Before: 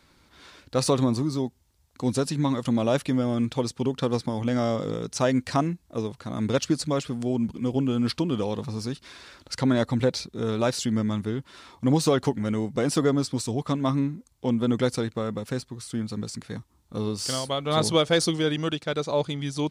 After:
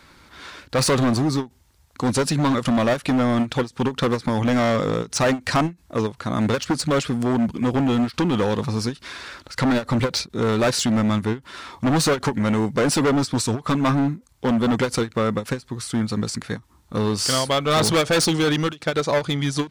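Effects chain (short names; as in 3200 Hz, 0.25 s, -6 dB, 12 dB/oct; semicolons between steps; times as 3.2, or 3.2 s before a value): overloaded stage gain 24 dB; bell 1500 Hz +5 dB 1.6 oct; ending taper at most 300 dB/s; gain +7.5 dB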